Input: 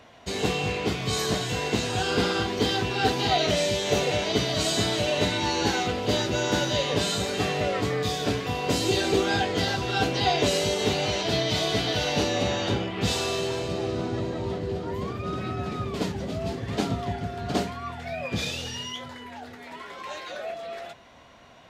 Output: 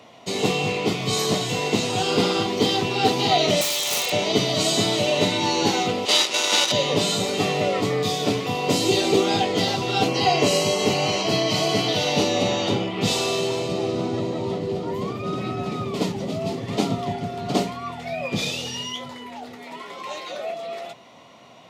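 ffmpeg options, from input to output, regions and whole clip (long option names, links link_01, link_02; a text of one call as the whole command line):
ffmpeg -i in.wav -filter_complex "[0:a]asettb=1/sr,asplit=3[link_01][link_02][link_03];[link_01]atrim=end=3.614[link_04];[link_02]atrim=start=3.61:end=4.12,asetpts=PTS-STARTPTS,afade=type=in:duration=0.004:curve=qsin,afade=type=out:start_time=0.506:duration=0.004:curve=qsin,highpass=950,highshelf=frequency=4600:gain=7,aeval=exprs='(mod(10*val(0)+1,2)-1)/10':channel_layout=same[link_05];[link_03]atrim=start=4.116[link_06];[link_04][link_05]acrossfade=duration=0.004:curve1=hsin:curve2=qsin[link_07];[link_07][link_06]acrossfade=duration=0.004:curve1=qsin:curve2=hsin,asettb=1/sr,asplit=3[link_08][link_09][link_10];[link_08]atrim=end=6.054[link_11];[link_09]atrim=start=6.05:end=6.72,asetpts=PTS-STARTPTS,afade=type=in:duration=0.004:curve=qsin,afade=type=out:start_time=0.666:duration=0.004:curve=qsin,tiltshelf=frequency=830:gain=-10,acrusher=bits=4:dc=4:mix=0:aa=0.000001,highpass=300,lowpass=6500[link_12];[link_10]atrim=start=6.716[link_13];[link_11][link_12]acrossfade=duration=0.004:curve1=hsin:curve2=qsin[link_14];[link_14][link_13]acrossfade=duration=0.004:curve1=qsin:curve2=hsin,asettb=1/sr,asplit=3[link_15][link_16][link_17];[link_15]atrim=end=10.084[link_18];[link_16]atrim=start=10.08:end=11.89,asetpts=PTS-STARTPTS,afade=type=in:duration=0.004:curve=qsin,afade=type=out:start_time=1.806:duration=0.004:curve=qsin,aeval=exprs='val(0)+0.00891*sin(2*PI*1100*n/s)':channel_layout=same,asuperstop=centerf=3600:order=4:qfactor=7,asplit=2[link_19][link_20];[link_20]adelay=42,volume=-11dB[link_21];[link_19][link_21]amix=inputs=2:normalize=0,atrim=end_sample=79821[link_22];[link_17]atrim=start=11.886[link_23];[link_18][link_22]acrossfade=duration=0.004:curve1=hsin:curve2=qsin[link_24];[link_24][link_23]acrossfade=duration=0.004:curve1=qsin:curve2=hsin,highpass=frequency=120:width=0.5412,highpass=frequency=120:width=1.3066,equalizer=frequency=1600:width=5.8:gain=-14.5,volume=4.5dB" out.wav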